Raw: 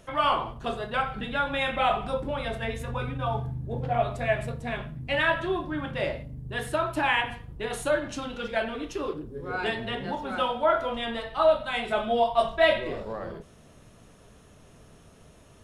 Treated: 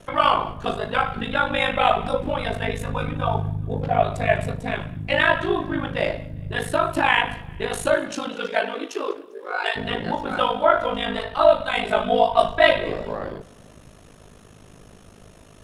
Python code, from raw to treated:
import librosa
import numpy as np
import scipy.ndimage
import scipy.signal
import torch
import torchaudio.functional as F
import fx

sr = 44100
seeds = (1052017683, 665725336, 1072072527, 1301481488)

y = fx.highpass(x, sr, hz=fx.line((7.94, 160.0), (9.75, 590.0)), slope=24, at=(7.94, 9.75), fade=0.02)
y = y * np.sin(2.0 * np.pi * 26.0 * np.arange(len(y)) / sr)
y = fx.echo_feedback(y, sr, ms=199, feedback_pct=46, wet_db=-23.5)
y = F.gain(torch.from_numpy(y), 8.5).numpy()